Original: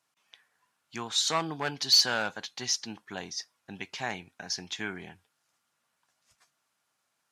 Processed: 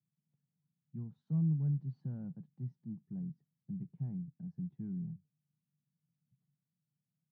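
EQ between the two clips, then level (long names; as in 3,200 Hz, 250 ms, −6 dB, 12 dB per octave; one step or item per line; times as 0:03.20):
flat-topped band-pass 150 Hz, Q 2.7
+12.0 dB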